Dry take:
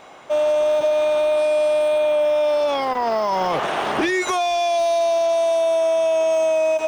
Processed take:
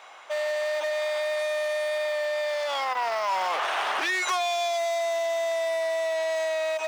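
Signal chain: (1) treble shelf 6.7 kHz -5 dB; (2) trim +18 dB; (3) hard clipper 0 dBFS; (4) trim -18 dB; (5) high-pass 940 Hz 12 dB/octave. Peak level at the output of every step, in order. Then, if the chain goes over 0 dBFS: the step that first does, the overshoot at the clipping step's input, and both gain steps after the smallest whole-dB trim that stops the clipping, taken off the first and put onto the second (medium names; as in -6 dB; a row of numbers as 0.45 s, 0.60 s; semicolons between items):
-12.5 dBFS, +5.5 dBFS, 0.0 dBFS, -18.0 dBFS, -15.5 dBFS; step 2, 5.5 dB; step 2 +12 dB, step 4 -12 dB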